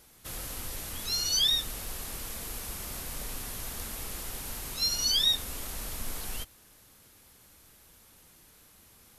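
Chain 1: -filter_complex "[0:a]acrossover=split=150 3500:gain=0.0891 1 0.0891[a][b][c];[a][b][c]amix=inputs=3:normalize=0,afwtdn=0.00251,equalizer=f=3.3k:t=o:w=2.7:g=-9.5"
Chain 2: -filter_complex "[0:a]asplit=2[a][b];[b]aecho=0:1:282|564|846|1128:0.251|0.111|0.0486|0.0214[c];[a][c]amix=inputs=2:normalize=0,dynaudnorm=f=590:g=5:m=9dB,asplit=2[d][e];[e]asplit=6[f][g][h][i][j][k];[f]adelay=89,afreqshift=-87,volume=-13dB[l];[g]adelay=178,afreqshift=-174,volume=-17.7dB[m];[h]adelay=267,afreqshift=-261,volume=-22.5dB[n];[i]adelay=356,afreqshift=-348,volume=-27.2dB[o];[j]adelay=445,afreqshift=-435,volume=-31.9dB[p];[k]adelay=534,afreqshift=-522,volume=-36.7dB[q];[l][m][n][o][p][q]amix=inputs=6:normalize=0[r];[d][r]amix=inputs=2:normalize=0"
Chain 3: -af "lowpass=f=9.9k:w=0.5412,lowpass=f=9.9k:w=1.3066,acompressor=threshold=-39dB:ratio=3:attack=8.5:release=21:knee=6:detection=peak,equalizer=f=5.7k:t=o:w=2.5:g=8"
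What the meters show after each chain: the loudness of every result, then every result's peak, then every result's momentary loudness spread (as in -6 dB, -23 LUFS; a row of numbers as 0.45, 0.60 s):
-46.0, -22.0, -31.5 LUFS; -29.5, -5.5, -19.0 dBFS; 11, 20, 11 LU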